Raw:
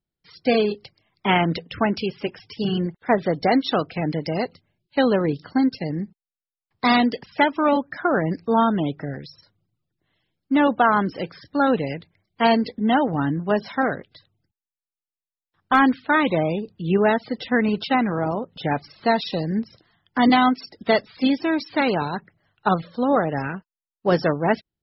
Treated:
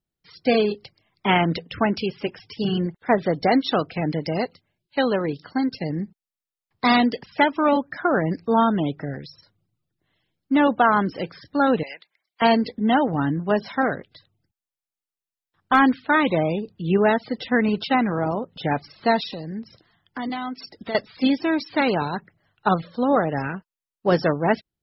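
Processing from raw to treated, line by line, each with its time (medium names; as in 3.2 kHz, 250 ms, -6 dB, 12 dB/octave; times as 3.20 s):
4.45–5.69 s: bass shelf 420 Hz -5.5 dB
11.83–12.42 s: high-pass 1.1 kHz
19.25–20.95 s: compression 2.5:1, threshold -32 dBFS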